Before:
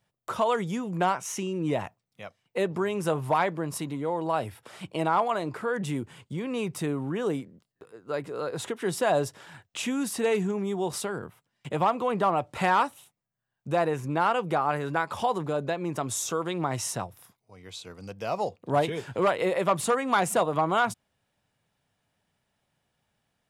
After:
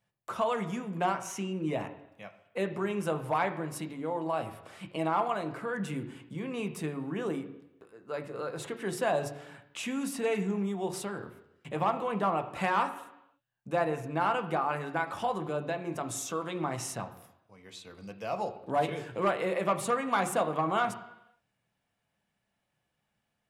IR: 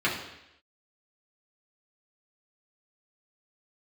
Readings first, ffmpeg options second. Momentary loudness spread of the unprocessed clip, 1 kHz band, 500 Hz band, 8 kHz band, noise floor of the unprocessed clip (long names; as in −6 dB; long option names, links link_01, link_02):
12 LU, −4.0 dB, −4.5 dB, −6.0 dB, −80 dBFS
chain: -filter_complex "[0:a]asplit=2[link_01][link_02];[1:a]atrim=start_sample=2205,lowpass=4000[link_03];[link_02][link_03]afir=irnorm=-1:irlink=0,volume=-16dB[link_04];[link_01][link_04]amix=inputs=2:normalize=0,volume=-6dB"